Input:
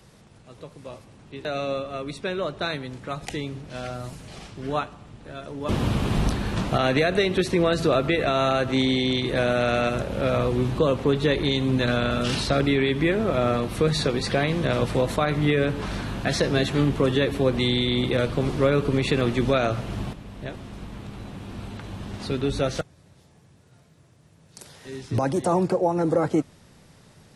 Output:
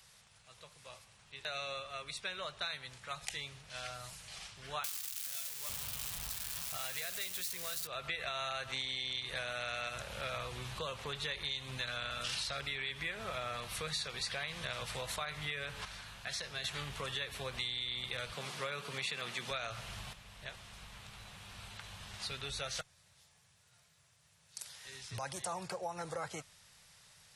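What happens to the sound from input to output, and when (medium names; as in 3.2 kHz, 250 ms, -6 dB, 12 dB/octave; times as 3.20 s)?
4.84–7.87 s: zero-crossing glitches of -15.5 dBFS
15.85–16.64 s: gain -7.5 dB
18.33–19.51 s: high-pass 140 Hz 24 dB/octave
whole clip: amplifier tone stack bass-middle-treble 10-0-10; compression, threshold -35 dBFS; bass shelf 100 Hz -11 dB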